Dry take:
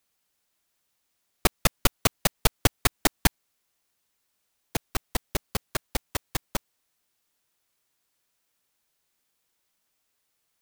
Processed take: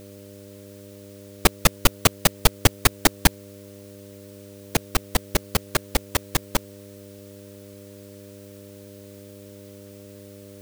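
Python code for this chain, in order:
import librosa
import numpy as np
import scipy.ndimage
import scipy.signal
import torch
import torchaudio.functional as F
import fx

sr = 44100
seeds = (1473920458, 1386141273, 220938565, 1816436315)

y = fx.power_curve(x, sr, exponent=0.7)
y = fx.dmg_buzz(y, sr, base_hz=100.0, harmonics=6, level_db=-45.0, tilt_db=-1, odd_only=False)
y = y * 10.0 ** (1.0 / 20.0)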